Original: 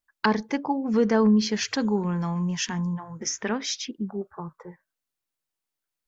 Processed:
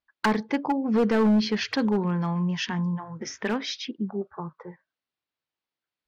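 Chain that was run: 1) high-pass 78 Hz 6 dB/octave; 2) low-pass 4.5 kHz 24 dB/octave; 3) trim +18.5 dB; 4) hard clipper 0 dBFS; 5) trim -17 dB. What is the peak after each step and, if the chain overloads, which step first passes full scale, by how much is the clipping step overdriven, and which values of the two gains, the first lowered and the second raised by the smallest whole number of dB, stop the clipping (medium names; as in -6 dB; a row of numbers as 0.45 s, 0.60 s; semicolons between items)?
-9.5 dBFS, -10.0 dBFS, +8.5 dBFS, 0.0 dBFS, -17.0 dBFS; step 3, 8.5 dB; step 3 +9.5 dB, step 5 -8 dB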